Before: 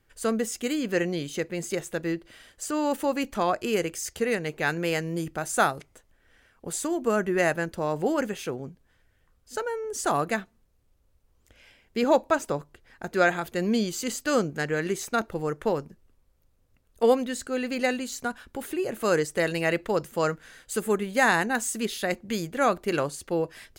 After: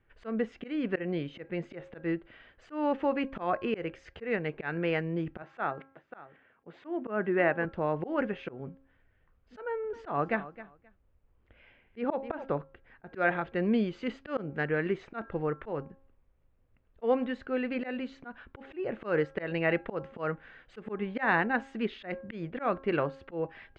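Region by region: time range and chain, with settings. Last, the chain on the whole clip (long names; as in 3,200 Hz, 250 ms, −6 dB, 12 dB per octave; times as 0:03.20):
0:05.42–0:07.65: band-pass filter 160–3,400 Hz + single-tap delay 543 ms −15.5 dB
0:09.64–0:12.58: high-frequency loss of the air 62 metres + repeating echo 264 ms, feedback 17%, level −16.5 dB
whole clip: low-pass filter 2,700 Hz 24 dB per octave; hum removal 269.9 Hz, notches 6; volume swells 149 ms; level −2 dB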